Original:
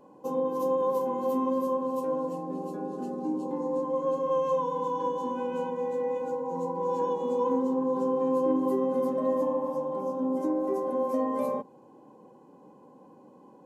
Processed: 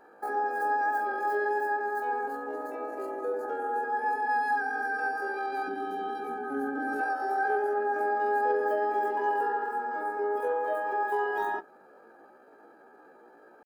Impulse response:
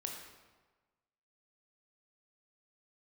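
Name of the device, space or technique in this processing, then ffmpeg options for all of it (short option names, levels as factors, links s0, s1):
chipmunk voice: -filter_complex "[0:a]asplit=3[s0][s1][s2];[s0]afade=t=out:st=5.67:d=0.02[s3];[s1]asubboost=boost=9:cutoff=150,afade=t=in:st=5.67:d=0.02,afade=t=out:st=7.01:d=0.02[s4];[s2]afade=t=in:st=7.01:d=0.02[s5];[s3][s4][s5]amix=inputs=3:normalize=0,asetrate=70004,aresample=44100,atempo=0.629961,volume=0.891"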